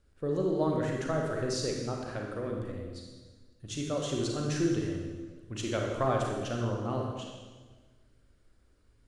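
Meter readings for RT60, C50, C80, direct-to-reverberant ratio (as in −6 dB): 1.4 s, 1.0 dB, 3.5 dB, −0.5 dB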